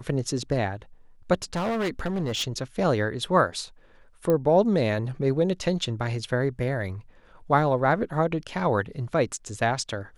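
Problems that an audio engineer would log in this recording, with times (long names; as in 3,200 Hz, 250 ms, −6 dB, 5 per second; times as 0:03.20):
0:01.34–0:02.44: clipping −23.5 dBFS
0:04.30: click −13 dBFS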